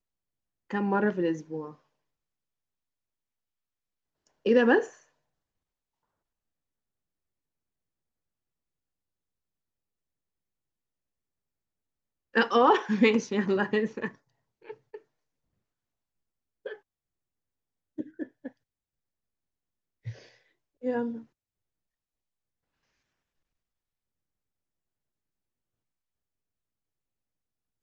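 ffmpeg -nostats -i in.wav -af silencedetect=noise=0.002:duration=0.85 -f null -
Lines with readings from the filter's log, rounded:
silence_start: 1.76
silence_end: 4.27 | silence_duration: 2.51
silence_start: 5.03
silence_end: 12.34 | silence_duration: 7.31
silence_start: 15.00
silence_end: 16.65 | silence_duration: 1.65
silence_start: 16.79
silence_end: 17.98 | silence_duration: 1.19
silence_start: 18.51
silence_end: 20.05 | silence_duration: 1.54
silence_start: 21.26
silence_end: 27.83 | silence_duration: 6.57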